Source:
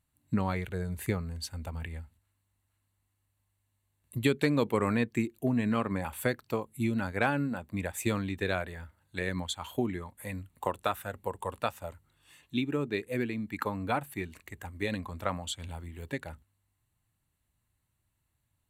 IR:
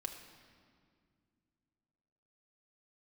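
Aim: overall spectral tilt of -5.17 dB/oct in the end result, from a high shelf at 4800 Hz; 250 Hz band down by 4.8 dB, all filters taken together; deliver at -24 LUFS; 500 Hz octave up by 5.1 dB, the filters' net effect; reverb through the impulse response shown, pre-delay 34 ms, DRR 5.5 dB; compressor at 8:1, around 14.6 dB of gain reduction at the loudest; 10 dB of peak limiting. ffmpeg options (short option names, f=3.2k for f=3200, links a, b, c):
-filter_complex "[0:a]equalizer=f=250:t=o:g=-8.5,equalizer=f=500:t=o:g=8.5,highshelf=f=4.8k:g=-8.5,acompressor=threshold=-35dB:ratio=8,alimiter=level_in=4.5dB:limit=-24dB:level=0:latency=1,volume=-4.5dB,asplit=2[a][b];[1:a]atrim=start_sample=2205,adelay=34[c];[b][c]afir=irnorm=-1:irlink=0,volume=-4dB[d];[a][d]amix=inputs=2:normalize=0,volume=17dB"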